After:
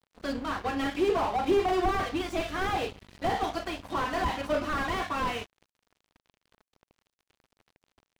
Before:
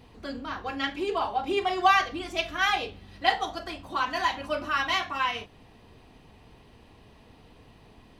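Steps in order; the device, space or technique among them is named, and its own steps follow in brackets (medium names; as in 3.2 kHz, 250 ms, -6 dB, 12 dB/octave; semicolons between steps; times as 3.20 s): early transistor amplifier (crossover distortion -46 dBFS; slew-rate limiter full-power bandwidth 23 Hz); trim +6 dB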